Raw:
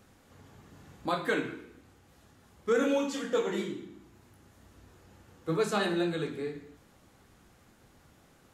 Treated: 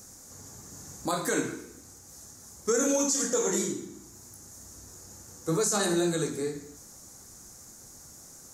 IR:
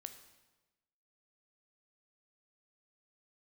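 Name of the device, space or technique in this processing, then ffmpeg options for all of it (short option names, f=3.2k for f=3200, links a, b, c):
over-bright horn tweeter: -af "highshelf=f=4.4k:t=q:w=3:g=13.5,alimiter=limit=-21dB:level=0:latency=1:release=48,volume=4dB"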